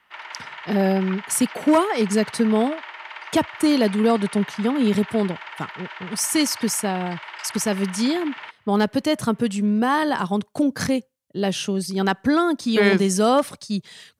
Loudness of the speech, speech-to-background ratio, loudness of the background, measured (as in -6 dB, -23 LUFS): -22.0 LUFS, 14.0 dB, -36.0 LUFS